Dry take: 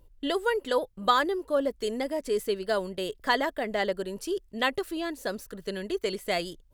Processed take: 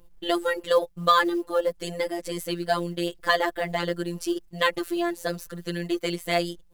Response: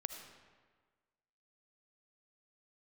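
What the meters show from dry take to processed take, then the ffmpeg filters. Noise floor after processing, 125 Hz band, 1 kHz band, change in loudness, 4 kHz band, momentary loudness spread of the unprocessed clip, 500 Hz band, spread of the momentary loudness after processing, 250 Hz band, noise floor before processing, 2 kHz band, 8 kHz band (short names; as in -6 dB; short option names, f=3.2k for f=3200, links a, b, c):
-54 dBFS, +9.5 dB, +3.5 dB, +3.0 dB, +3.0 dB, 8 LU, +2.0 dB, 10 LU, +4.0 dB, -59 dBFS, +3.0 dB, +4.0 dB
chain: -af "acontrast=29,afftfilt=real='hypot(re,im)*cos(PI*b)':imag='0':win_size=1024:overlap=0.75,acrusher=bits=8:mode=log:mix=0:aa=0.000001,volume=2dB"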